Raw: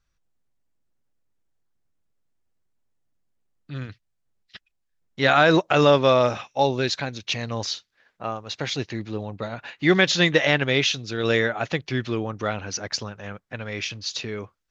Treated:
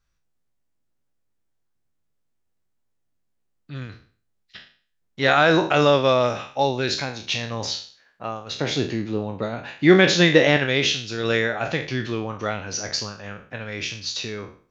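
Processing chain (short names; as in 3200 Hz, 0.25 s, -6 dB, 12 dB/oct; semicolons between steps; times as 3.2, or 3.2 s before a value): spectral trails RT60 0.44 s; 8.55–10.57 bell 280 Hz +6 dB 2.5 oct; gain -1 dB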